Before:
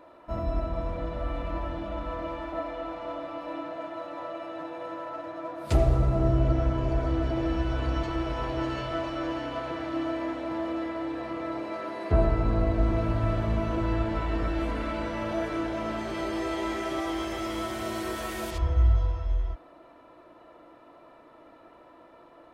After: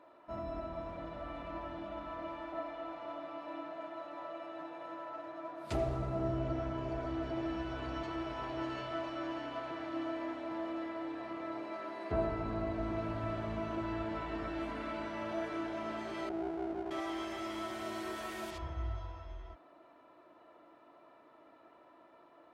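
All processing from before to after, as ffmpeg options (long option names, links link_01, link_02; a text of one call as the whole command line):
ffmpeg -i in.wav -filter_complex "[0:a]asettb=1/sr,asplit=3[link_01][link_02][link_03];[link_01]atrim=end=16.294[link_04];[link_02]atrim=start=16.29:end=16.91,asetpts=PTS-STARTPTS,afade=type=in:duration=0.004:curve=qsin,afade=type=out:start_time=0.616:duration=0.004:curve=qsin,lowpass=frequency=400:width_type=q:width=3.2,aeval=exprs='max(val(0),0)':channel_layout=same[link_05];[link_03]atrim=start=16.906[link_06];[link_04][link_05]acrossfade=duration=0.004:curve1=hsin:curve2=qsin[link_07];[link_07][link_06]acrossfade=duration=0.004:curve1=qsin:curve2=hsin,highpass=frequency=220:poles=1,highshelf=frequency=7400:gain=-7.5,bandreject=frequency=500:width=12,volume=-6.5dB" out.wav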